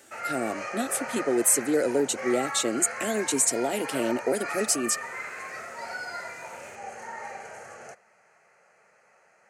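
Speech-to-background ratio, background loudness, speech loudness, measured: 10.0 dB, −36.0 LKFS, −26.0 LKFS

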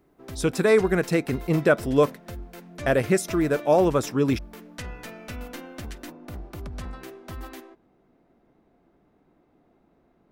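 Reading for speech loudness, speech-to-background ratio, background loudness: −23.0 LKFS, 16.5 dB, −39.5 LKFS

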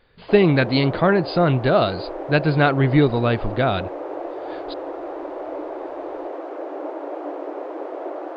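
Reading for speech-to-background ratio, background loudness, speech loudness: 12.5 dB, −31.5 LKFS, −19.0 LKFS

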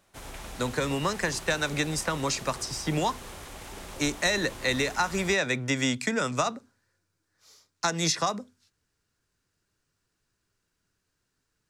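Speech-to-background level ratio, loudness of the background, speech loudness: 14.0 dB, −42.0 LKFS, −28.0 LKFS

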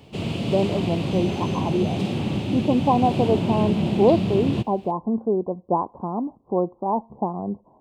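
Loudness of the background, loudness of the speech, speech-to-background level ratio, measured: −25.5 LKFS, −24.5 LKFS, 1.0 dB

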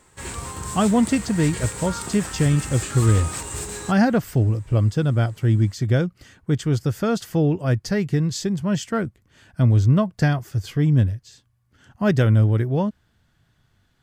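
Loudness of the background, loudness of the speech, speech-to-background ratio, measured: −30.5 LKFS, −21.0 LKFS, 9.5 dB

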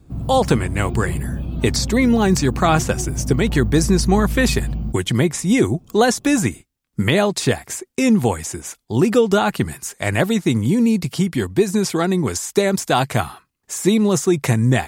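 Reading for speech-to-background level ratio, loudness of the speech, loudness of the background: 7.5 dB, −19.0 LKFS, −26.5 LKFS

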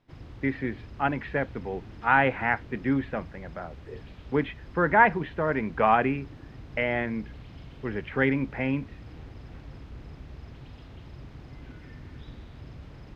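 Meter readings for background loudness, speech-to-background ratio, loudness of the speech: −46.0 LKFS, 19.0 dB, −27.0 LKFS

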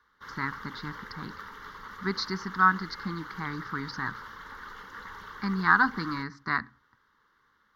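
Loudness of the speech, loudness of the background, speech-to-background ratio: −29.0 LKFS, −43.0 LKFS, 14.0 dB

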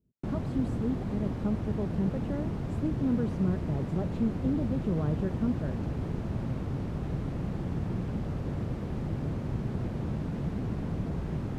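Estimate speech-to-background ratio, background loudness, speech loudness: 1.0 dB, −34.0 LKFS, −33.0 LKFS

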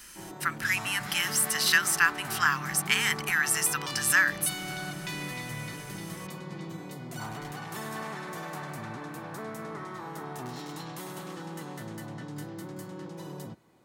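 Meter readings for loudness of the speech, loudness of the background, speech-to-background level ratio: −25.5 LKFS, −38.0 LKFS, 12.5 dB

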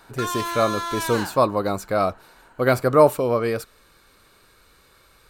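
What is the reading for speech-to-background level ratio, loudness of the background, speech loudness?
6.5 dB, −28.5 LKFS, −22.0 LKFS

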